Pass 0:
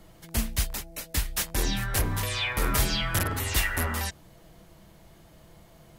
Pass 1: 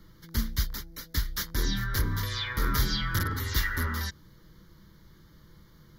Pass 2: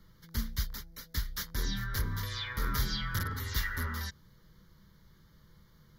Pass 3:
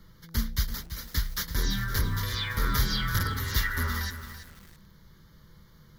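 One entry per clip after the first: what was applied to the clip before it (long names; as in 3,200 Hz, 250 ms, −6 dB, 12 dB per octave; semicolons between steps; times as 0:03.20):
phaser with its sweep stopped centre 2,600 Hz, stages 6
parametric band 320 Hz −10.5 dB 0.24 octaves; level −5 dB
feedback echo at a low word length 333 ms, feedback 35%, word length 8 bits, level −10.5 dB; level +5.5 dB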